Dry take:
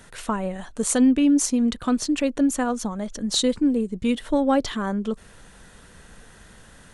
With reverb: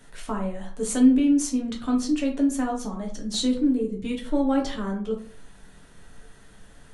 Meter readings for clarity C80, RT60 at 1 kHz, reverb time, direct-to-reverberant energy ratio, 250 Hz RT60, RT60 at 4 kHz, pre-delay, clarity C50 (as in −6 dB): 14.0 dB, 0.40 s, 0.45 s, −1.0 dB, 0.50 s, 0.30 s, 7 ms, 8.5 dB